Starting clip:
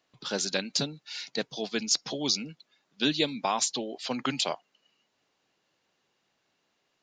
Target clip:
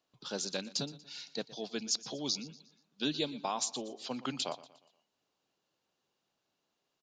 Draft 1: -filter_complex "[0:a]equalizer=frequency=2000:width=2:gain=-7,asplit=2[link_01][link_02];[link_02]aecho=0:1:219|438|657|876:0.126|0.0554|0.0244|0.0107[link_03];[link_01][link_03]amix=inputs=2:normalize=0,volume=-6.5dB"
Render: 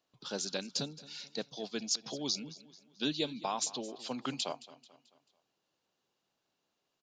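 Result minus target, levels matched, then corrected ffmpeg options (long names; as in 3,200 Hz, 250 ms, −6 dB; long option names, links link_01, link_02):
echo 100 ms late
-filter_complex "[0:a]equalizer=frequency=2000:width=2:gain=-7,asplit=2[link_01][link_02];[link_02]aecho=0:1:119|238|357|476:0.126|0.0554|0.0244|0.0107[link_03];[link_01][link_03]amix=inputs=2:normalize=0,volume=-6.5dB"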